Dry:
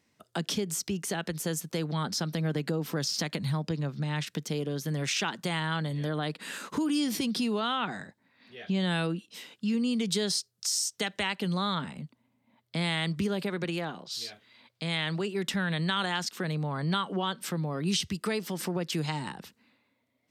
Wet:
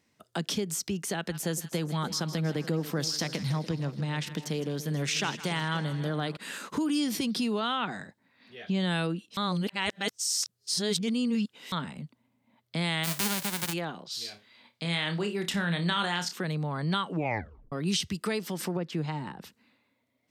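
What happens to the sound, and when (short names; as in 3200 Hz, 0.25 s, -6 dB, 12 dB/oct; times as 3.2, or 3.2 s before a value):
1.14–6.37 split-band echo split 870 Hz, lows 0.289 s, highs 0.159 s, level -13 dB
9.37–11.72 reverse
13.03–13.72 spectral whitening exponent 0.1
14.22–16.33 flutter echo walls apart 5 m, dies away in 0.22 s
17.09 tape stop 0.63 s
18.77–19.41 LPF 1400 Hz 6 dB/oct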